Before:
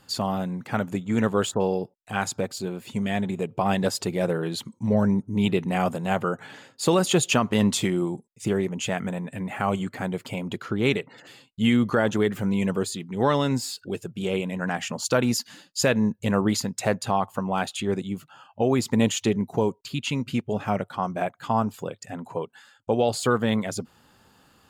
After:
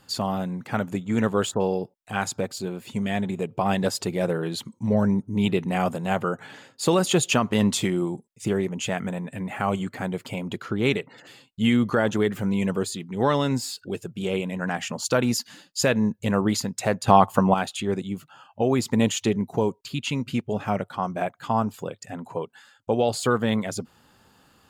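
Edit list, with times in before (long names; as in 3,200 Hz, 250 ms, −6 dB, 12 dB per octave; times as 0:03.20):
0:17.08–0:17.54: clip gain +8.5 dB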